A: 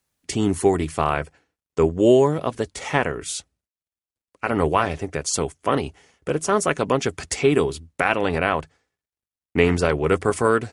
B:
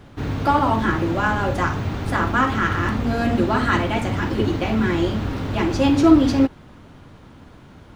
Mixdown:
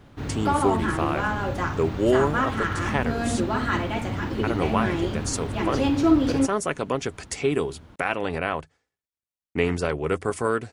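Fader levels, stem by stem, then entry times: -5.5, -5.5 dB; 0.00, 0.00 s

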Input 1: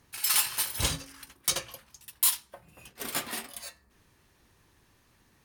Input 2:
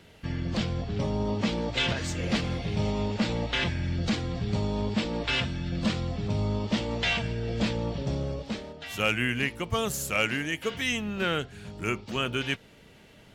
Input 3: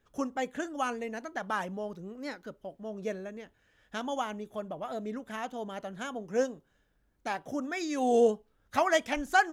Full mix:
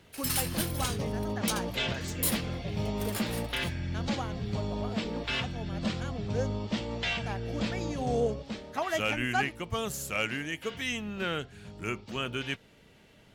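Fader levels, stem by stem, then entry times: -6.0, -4.5, -5.5 dB; 0.00, 0.00, 0.00 s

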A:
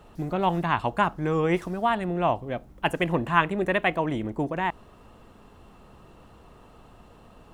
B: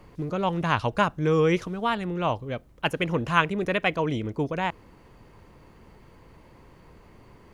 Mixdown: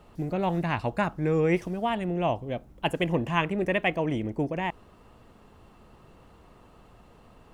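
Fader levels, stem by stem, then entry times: -3.5, -10.0 dB; 0.00, 0.00 s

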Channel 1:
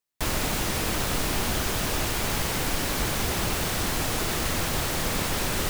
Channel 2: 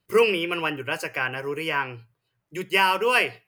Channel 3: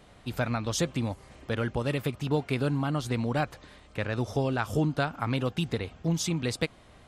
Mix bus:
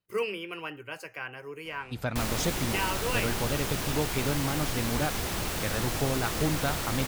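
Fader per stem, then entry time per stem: -5.0, -11.5, -2.5 dB; 1.95, 0.00, 1.65 s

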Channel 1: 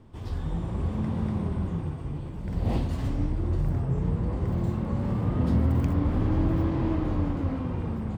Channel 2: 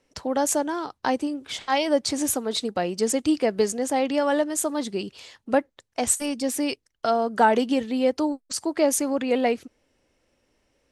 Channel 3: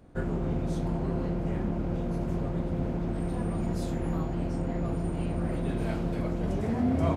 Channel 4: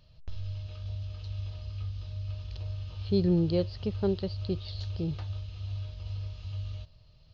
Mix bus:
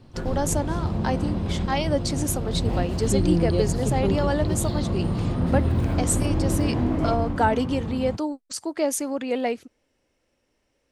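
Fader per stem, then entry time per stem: 0.0, -3.0, -0.5, +2.0 dB; 0.00, 0.00, 0.00, 0.00 s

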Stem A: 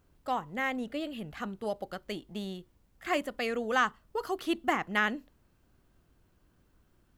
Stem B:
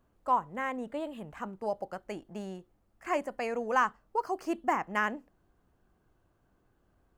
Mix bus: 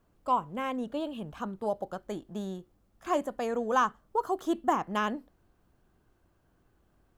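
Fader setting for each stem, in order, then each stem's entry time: -6.5, +0.5 dB; 0.00, 0.00 s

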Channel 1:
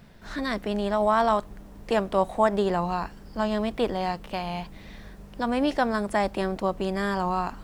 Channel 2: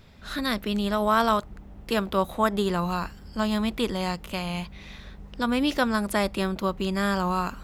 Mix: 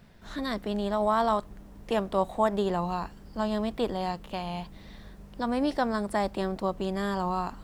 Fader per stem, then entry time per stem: -4.0, -17.5 dB; 0.00, 0.00 s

